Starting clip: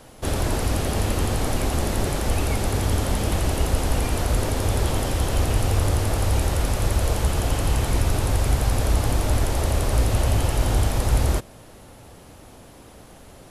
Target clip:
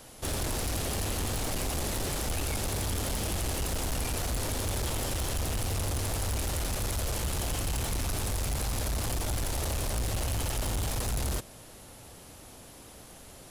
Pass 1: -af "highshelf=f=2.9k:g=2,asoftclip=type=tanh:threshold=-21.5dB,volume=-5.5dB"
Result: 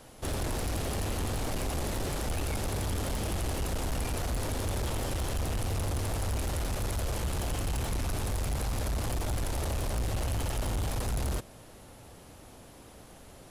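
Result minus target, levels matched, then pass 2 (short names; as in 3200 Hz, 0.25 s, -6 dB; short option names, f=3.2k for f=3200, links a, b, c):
8000 Hz band -4.0 dB
-af "highshelf=f=2.9k:g=9,asoftclip=type=tanh:threshold=-21.5dB,volume=-5.5dB"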